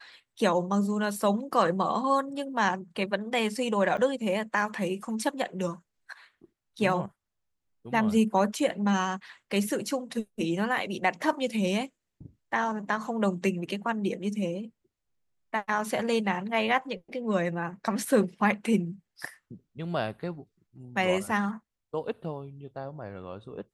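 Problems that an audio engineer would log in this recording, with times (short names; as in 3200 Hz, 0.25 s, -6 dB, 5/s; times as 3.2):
3.97–3.98 gap 6.2 ms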